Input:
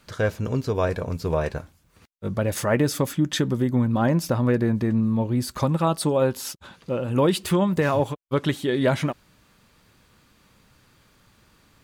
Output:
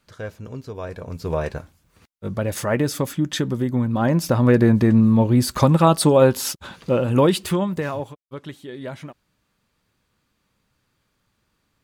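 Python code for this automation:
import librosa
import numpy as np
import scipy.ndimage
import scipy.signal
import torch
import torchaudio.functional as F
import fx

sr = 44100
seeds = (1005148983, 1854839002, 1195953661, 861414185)

y = fx.gain(x, sr, db=fx.line((0.84, -9.0), (1.32, 0.0), (3.91, 0.0), (4.63, 7.0), (6.98, 7.0), (7.91, -5.0), (8.26, -12.0)))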